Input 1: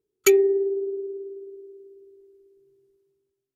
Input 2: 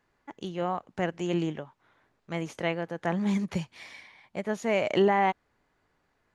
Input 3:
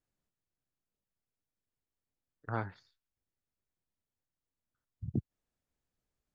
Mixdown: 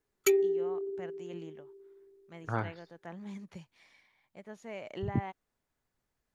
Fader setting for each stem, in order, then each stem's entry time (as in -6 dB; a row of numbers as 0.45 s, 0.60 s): -8.5 dB, -16.5 dB, +2.5 dB; 0.00 s, 0.00 s, 0.00 s